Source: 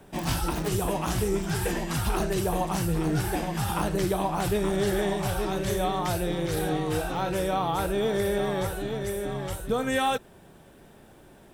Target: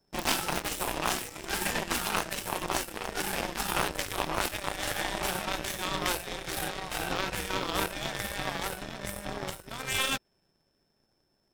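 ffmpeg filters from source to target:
-af "afftfilt=real='re*lt(hypot(re,im),0.178)':imag='im*lt(hypot(re,im),0.178)':win_size=1024:overlap=0.75,adynamicequalizer=threshold=0.00316:dfrequency=2400:dqfactor=1.5:tfrequency=2400:tqfactor=1.5:attack=5:release=100:ratio=0.375:range=2:mode=boostabove:tftype=bell,aeval=exprs='val(0)+0.00224*sin(2*PI*5300*n/s)':c=same,aeval=exprs='0.15*(cos(1*acos(clip(val(0)/0.15,-1,1)))-cos(1*PI/2))+0.0422*(cos(2*acos(clip(val(0)/0.15,-1,1)))-cos(2*PI/2))+0.00422*(cos(5*acos(clip(val(0)/0.15,-1,1)))-cos(5*PI/2))+0.0237*(cos(7*acos(clip(val(0)/0.15,-1,1)))-cos(7*PI/2))+0.000944*(cos(8*acos(clip(val(0)/0.15,-1,1)))-cos(8*PI/2))':c=same,volume=4dB"

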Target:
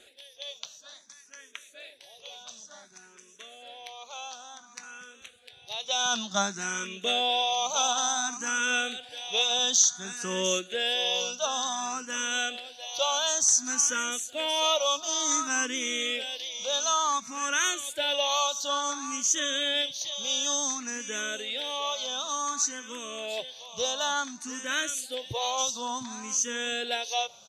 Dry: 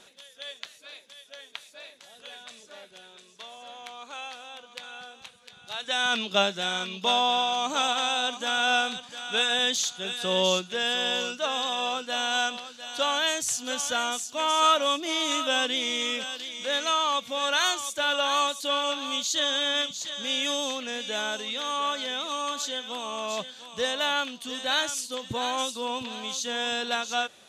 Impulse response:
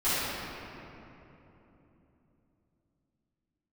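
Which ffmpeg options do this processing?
-filter_complex "[0:a]equalizer=f=6k:w=4.8:g=13.5,asplit=2[a][b];[b]adelay=373.2,volume=-27dB,highshelf=f=4k:g=-8.4[c];[a][c]amix=inputs=2:normalize=0,asplit=2[d][e];[e]afreqshift=0.56[f];[d][f]amix=inputs=2:normalize=1"

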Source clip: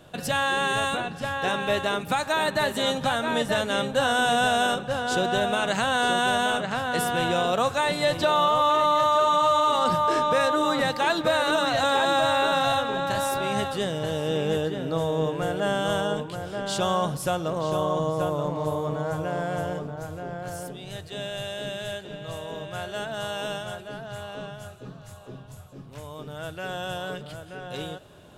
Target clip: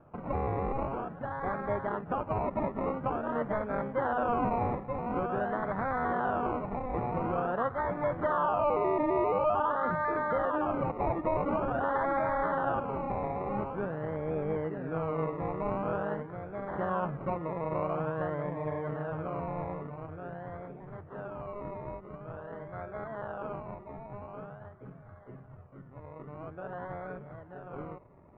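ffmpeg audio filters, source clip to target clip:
-af "acrusher=samples=22:mix=1:aa=0.000001:lfo=1:lforange=13.2:lforate=0.47,lowpass=f=1.6k:w=0.5412,lowpass=f=1.6k:w=1.3066,volume=-6.5dB"

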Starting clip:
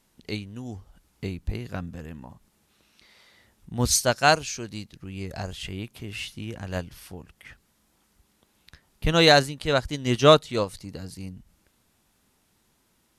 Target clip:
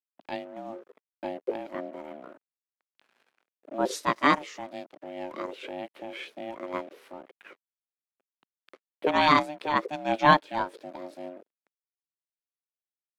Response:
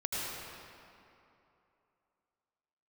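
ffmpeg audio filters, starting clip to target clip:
-filter_complex "[0:a]acrusher=bits=7:mix=0:aa=0.5,aeval=exprs='val(0)*sin(2*PI*450*n/s)':c=same,acrossover=split=210 2900:gain=0.0708 1 0.141[a][b][c];[a][b][c]amix=inputs=3:normalize=0,volume=1.5dB"

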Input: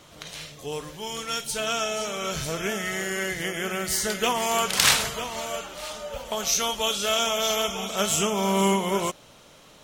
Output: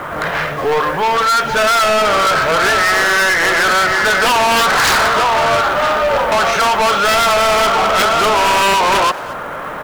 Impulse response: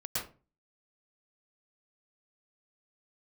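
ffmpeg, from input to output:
-filter_complex "[0:a]equalizer=f=880:t=o:w=2.3:g=8,acrossover=split=350[a][b];[a]acompressor=threshold=-43dB:ratio=6[c];[c][b]amix=inputs=2:normalize=0,lowpass=f=1.6k:t=q:w=2.5,aresample=16000,aeval=exprs='1.12*sin(PI/2*6.31*val(0)/1.12)':c=same,aresample=44100,acrusher=bits=5:mode=log:mix=0:aa=0.000001,asoftclip=type=tanh:threshold=-11.5dB,asplit=2[d][e];[e]adelay=220,highpass=300,lowpass=3.4k,asoftclip=type=hard:threshold=-21dB,volume=-11dB[f];[d][f]amix=inputs=2:normalize=0"

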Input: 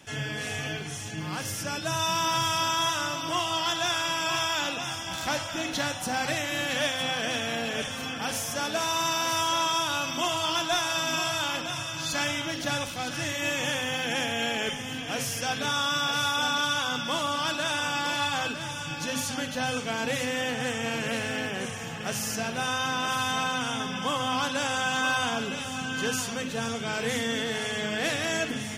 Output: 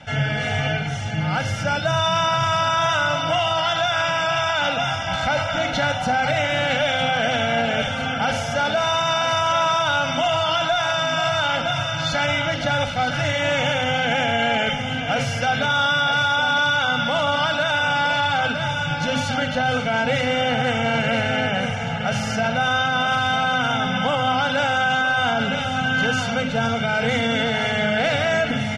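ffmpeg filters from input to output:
-af "lowpass=3k,aecho=1:1:1.4:0.92,alimiter=limit=-21dB:level=0:latency=1:release=28,volume=9dB"

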